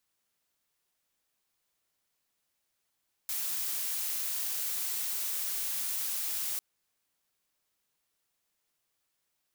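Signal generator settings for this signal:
noise blue, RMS −33.5 dBFS 3.30 s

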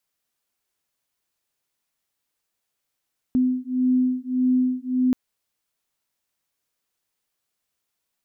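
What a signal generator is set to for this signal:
two tones that beat 253 Hz, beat 1.7 Hz, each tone −21.5 dBFS 1.78 s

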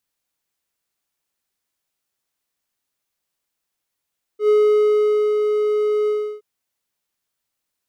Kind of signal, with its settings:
note with an ADSR envelope triangle 422 Hz, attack 97 ms, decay 858 ms, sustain −5 dB, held 1.69 s, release 331 ms −9 dBFS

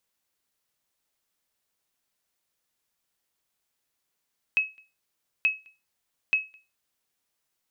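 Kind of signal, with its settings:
ping with an echo 2,570 Hz, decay 0.26 s, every 0.88 s, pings 3, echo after 0.21 s, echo −30 dB −15 dBFS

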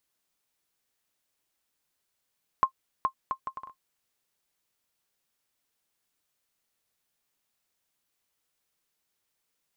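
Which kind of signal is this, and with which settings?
bouncing ball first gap 0.42 s, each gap 0.62, 1,060 Hz, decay 86 ms −11.5 dBFS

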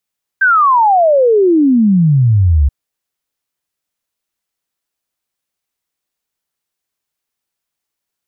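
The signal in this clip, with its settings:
exponential sine sweep 1,600 Hz → 66 Hz 2.28 s −6.5 dBFS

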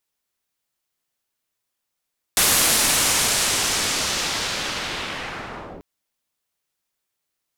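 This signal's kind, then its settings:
filter sweep on noise white, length 3.44 s lowpass, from 12,000 Hz, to 350 Hz, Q 0.91, linear, gain ramp −9 dB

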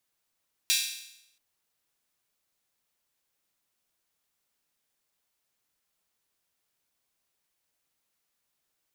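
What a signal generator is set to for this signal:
open synth hi-hat length 0.68 s, high-pass 3,100 Hz, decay 0.80 s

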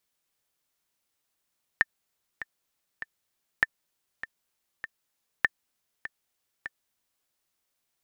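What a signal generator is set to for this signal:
click track 99 BPM, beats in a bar 3, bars 3, 1,790 Hz, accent 14.5 dB −7 dBFS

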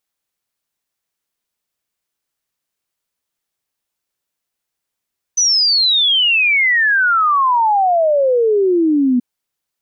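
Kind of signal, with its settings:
exponential sine sweep 6,100 Hz → 240 Hz 3.83 s −10.5 dBFS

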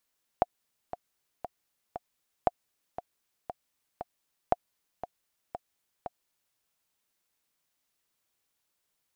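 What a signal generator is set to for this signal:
click track 117 BPM, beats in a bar 4, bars 3, 714 Hz, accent 13.5 dB −9 dBFS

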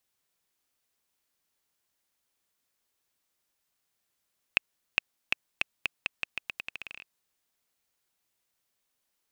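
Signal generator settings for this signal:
bouncing ball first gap 0.41 s, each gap 0.84, 2,600 Hz, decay 11 ms −5 dBFS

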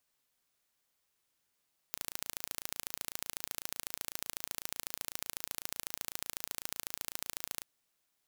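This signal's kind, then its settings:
impulse train 28 per second, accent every 2, −9 dBFS 5.68 s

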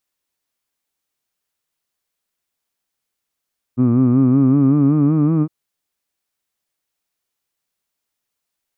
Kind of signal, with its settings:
vowel from formants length 1.71 s, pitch 120 Hz, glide +5 semitones, F1 270 Hz, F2 1,200 Hz, F3 2,400 Hz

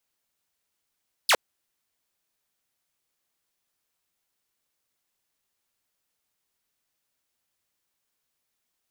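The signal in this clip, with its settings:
single falling chirp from 5,400 Hz, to 400 Hz, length 0.06 s saw, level −13.5 dB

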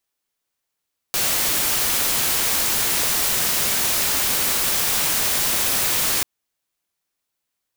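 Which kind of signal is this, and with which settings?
noise white, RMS −20.5 dBFS 5.09 s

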